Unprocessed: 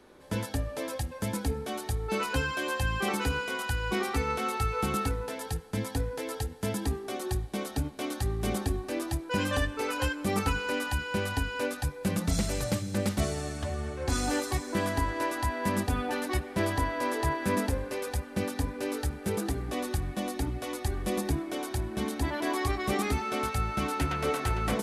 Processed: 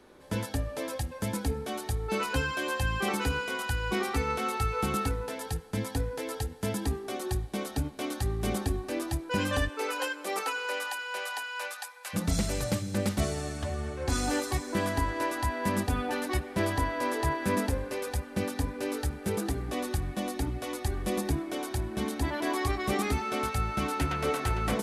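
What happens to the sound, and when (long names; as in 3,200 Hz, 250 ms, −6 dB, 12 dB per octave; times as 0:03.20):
0:09.68–0:12.13: high-pass filter 300 Hz → 890 Hz 24 dB per octave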